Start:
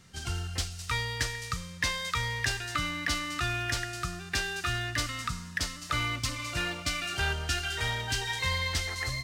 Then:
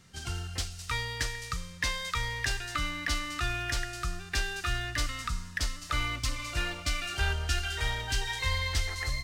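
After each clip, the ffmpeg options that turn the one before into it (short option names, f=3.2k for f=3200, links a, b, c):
-af "asubboost=boost=6.5:cutoff=51,volume=-1.5dB"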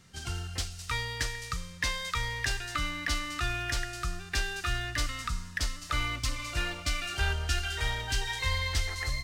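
-af anull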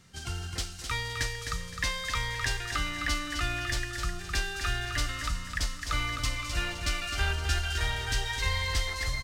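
-af "aecho=1:1:259|518|777|1036:0.473|0.17|0.0613|0.0221"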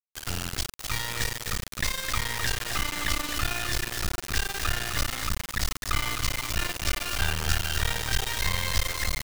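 -af "acrusher=bits=3:dc=4:mix=0:aa=0.000001,volume=5.5dB"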